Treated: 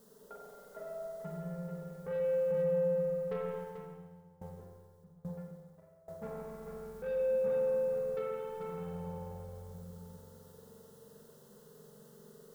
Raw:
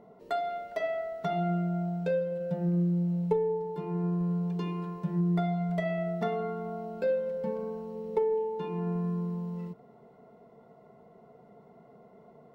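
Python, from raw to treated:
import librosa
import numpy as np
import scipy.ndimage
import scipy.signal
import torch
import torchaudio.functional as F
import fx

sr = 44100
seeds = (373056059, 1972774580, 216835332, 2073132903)

y = scipy.signal.sosfilt(scipy.signal.butter(4, 1400.0, 'lowpass', fs=sr, output='sos'), x)
y = fx.peak_eq(y, sr, hz=1100.0, db=-12.5, octaves=0.31)
y = fx.hum_notches(y, sr, base_hz=60, count=10)
y = fx.quant_dither(y, sr, seeds[0], bits=10, dither='triangular')
y = fx.fixed_phaser(y, sr, hz=470.0, stages=8)
y = 10.0 ** (-32.0 / 20.0) * np.tanh(y / 10.0 ** (-32.0 / 20.0))
y = y + 10.0 ** (-5.5 / 20.0) * np.pad(y, (int(439 * sr / 1000.0), 0))[:len(y)]
y = fx.rev_spring(y, sr, rt60_s=2.8, pass_ms=(44,), chirp_ms=60, drr_db=-2.5)
y = fx.tremolo_decay(y, sr, direction='decaying', hz=1.2, depth_db=21, at=(3.58, 6.22))
y = y * 10.0 ** (-5.0 / 20.0)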